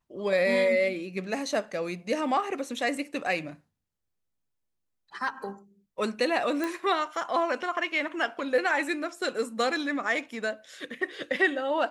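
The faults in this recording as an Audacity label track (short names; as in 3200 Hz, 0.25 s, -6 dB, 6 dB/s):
6.640000	6.640000	pop -17 dBFS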